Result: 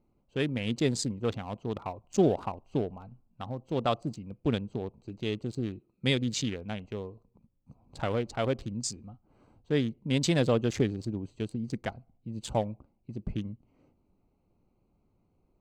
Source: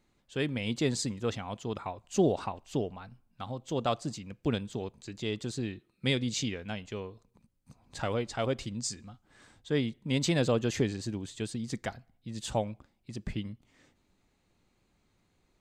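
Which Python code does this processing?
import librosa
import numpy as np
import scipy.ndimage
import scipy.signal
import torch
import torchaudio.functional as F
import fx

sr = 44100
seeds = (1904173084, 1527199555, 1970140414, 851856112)

y = fx.wiener(x, sr, points=25)
y = F.gain(torch.from_numpy(y), 2.0).numpy()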